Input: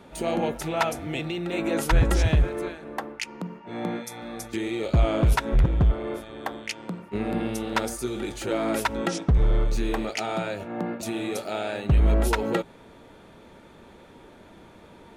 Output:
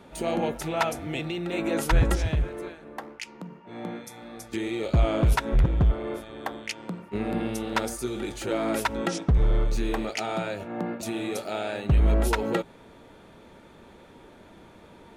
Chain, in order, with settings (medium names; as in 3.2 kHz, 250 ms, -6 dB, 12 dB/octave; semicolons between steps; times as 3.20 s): 2.15–4.52 s: flange 1.8 Hz, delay 8.2 ms, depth 9.3 ms, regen -85%; trim -1 dB